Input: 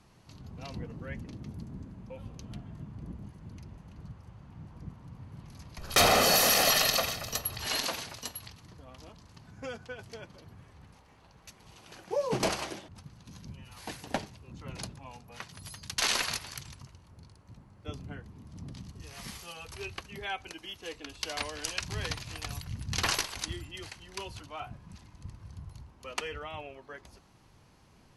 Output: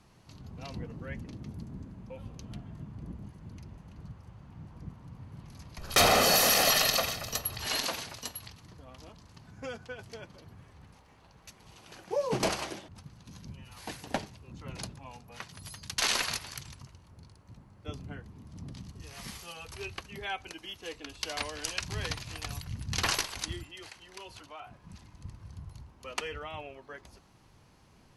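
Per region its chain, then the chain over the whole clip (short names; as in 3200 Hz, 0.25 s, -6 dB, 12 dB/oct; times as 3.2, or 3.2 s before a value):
23.63–24.84 tone controls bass -10 dB, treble -2 dB + compressor 3:1, threshold -42 dBFS
whole clip: dry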